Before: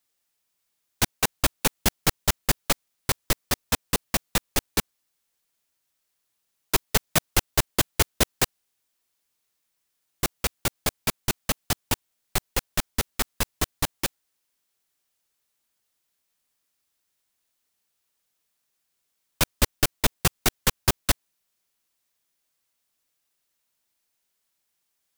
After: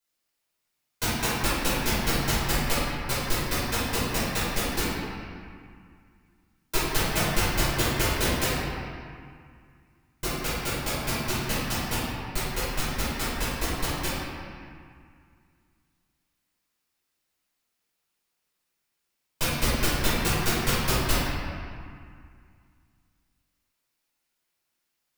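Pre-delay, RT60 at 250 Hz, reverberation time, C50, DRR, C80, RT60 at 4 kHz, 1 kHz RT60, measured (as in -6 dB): 5 ms, 2.5 s, 2.1 s, -3.5 dB, -11.5 dB, -0.5 dB, 1.5 s, 2.3 s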